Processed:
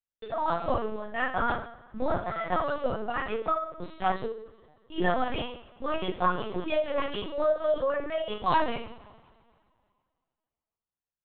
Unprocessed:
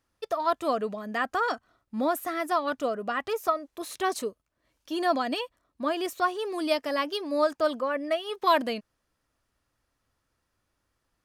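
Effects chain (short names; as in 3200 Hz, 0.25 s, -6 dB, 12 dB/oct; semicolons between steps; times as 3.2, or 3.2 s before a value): gate -40 dBFS, range -27 dB; two-slope reverb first 0.54 s, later 2.2 s, from -22 dB, DRR -4.5 dB; LPC vocoder at 8 kHz pitch kept; gain -6 dB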